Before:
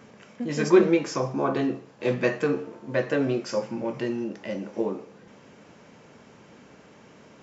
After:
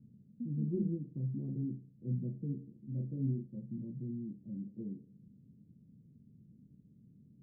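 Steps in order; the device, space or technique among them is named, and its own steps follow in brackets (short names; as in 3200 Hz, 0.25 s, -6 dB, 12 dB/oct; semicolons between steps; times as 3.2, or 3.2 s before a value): 2.88–3.47 doubler 37 ms -6 dB; the neighbour's flat through the wall (LPF 220 Hz 24 dB/oct; bell 130 Hz +4 dB 0.86 oct); gain -5 dB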